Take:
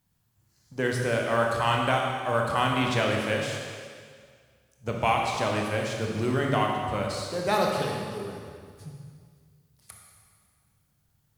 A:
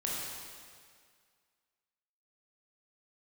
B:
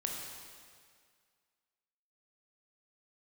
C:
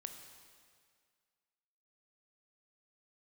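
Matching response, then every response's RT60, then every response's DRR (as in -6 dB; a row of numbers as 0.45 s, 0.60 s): B; 2.0 s, 2.0 s, 2.0 s; -5.0 dB, -0.5 dB, 5.5 dB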